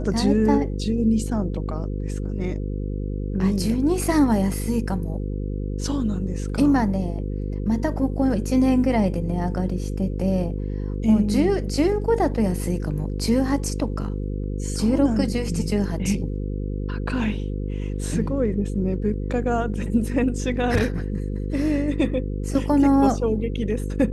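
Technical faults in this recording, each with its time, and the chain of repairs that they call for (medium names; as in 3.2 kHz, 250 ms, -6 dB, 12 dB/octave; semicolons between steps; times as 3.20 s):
buzz 50 Hz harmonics 10 -27 dBFS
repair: de-hum 50 Hz, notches 10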